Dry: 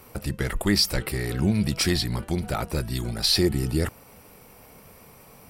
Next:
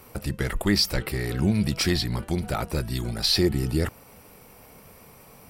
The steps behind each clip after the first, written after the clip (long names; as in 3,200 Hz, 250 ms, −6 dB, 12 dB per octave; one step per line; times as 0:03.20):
dynamic equaliser 9,400 Hz, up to −5 dB, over −43 dBFS, Q 1.2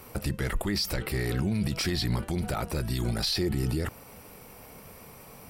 brickwall limiter −21 dBFS, peak gain reduction 10.5 dB
level +1.5 dB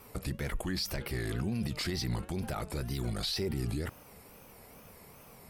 tape wow and flutter 150 cents
level −5.5 dB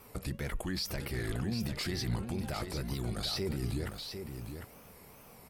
single-tap delay 751 ms −7.5 dB
level −1.5 dB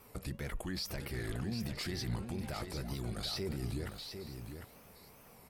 echo through a band-pass that steps 323 ms, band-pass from 790 Hz, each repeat 1.4 octaves, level −11.5 dB
level −3.5 dB